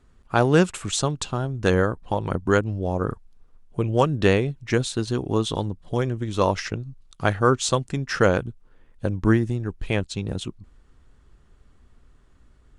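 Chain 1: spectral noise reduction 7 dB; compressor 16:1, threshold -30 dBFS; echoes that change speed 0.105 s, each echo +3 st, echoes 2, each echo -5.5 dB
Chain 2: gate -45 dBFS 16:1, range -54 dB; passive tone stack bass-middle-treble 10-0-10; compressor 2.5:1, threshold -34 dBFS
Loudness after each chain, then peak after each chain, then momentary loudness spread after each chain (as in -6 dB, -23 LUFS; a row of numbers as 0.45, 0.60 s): -35.5, -38.5 LUFS; -17.0, -17.5 dBFS; 6, 9 LU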